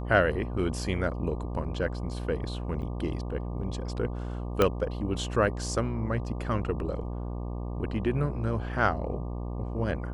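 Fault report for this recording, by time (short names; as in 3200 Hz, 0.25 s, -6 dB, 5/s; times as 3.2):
buzz 60 Hz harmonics 20 -34 dBFS
2.82 gap 3.9 ms
4.62 pop -9 dBFS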